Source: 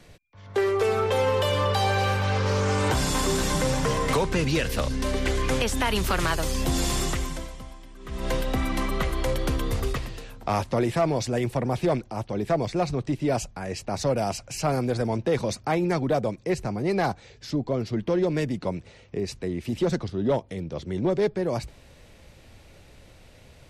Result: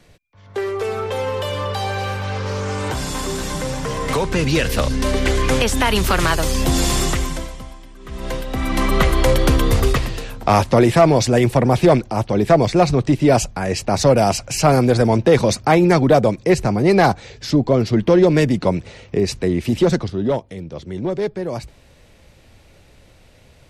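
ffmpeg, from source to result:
-af "volume=8.91,afade=t=in:st=3.88:d=0.78:silence=0.421697,afade=t=out:st=7.38:d=1.11:silence=0.398107,afade=t=in:st=8.49:d=0.49:silence=0.266073,afade=t=out:st=19.56:d=0.92:silence=0.334965"

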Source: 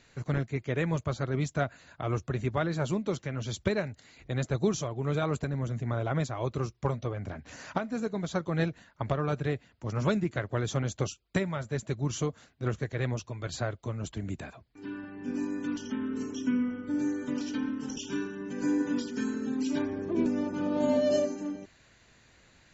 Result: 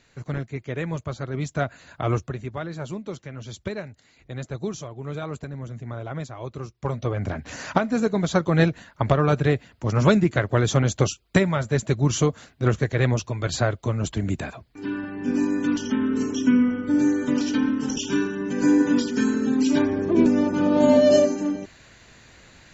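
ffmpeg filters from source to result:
-af "volume=10.6,afade=t=in:st=1.32:d=0.77:silence=0.421697,afade=t=out:st=2.09:d=0.29:silence=0.298538,afade=t=in:st=6.77:d=0.46:silence=0.237137"

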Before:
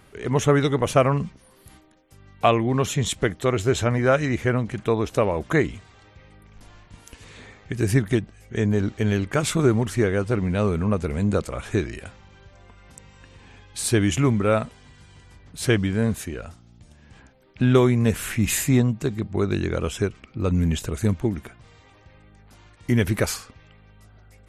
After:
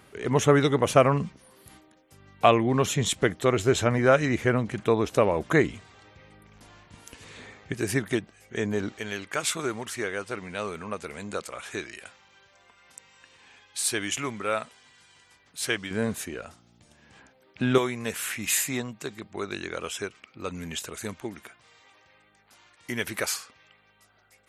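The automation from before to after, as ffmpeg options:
-af "asetnsamples=n=441:p=0,asendcmd='7.74 highpass f 450;8.99 highpass f 1300;15.91 highpass f 370;17.78 highpass f 1100',highpass=f=150:p=1"

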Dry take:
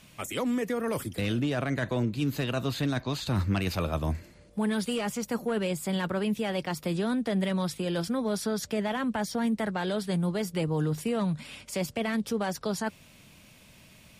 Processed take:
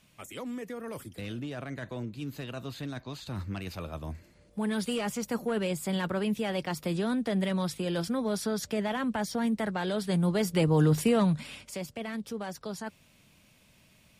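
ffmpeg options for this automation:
-af "volume=2,afade=t=in:st=4.14:d=0.73:silence=0.398107,afade=t=in:st=9.93:d=1.06:silence=0.446684,afade=t=out:st=10.99:d=0.82:silence=0.223872"

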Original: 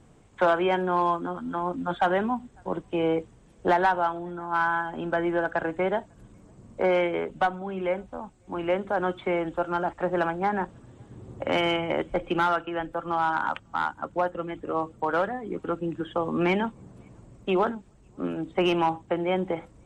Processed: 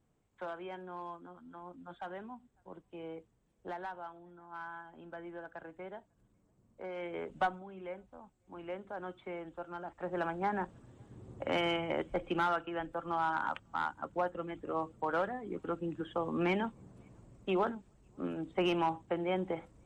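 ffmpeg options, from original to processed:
-af "volume=1.19,afade=t=in:st=6.95:d=0.49:silence=0.223872,afade=t=out:st=7.44:d=0.23:silence=0.354813,afade=t=in:st=9.87:d=0.52:silence=0.375837"

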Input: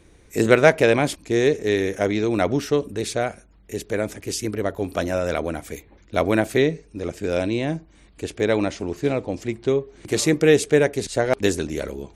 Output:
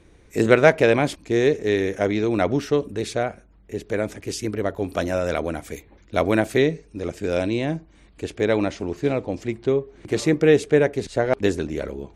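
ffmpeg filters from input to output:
-af "asetnsamples=n=441:p=0,asendcmd='3.23 lowpass f 2000;3.86 lowpass f 5200;4.89 lowpass f 9900;7.66 lowpass f 5100;9.66 lowpass f 2500',lowpass=f=4600:p=1"

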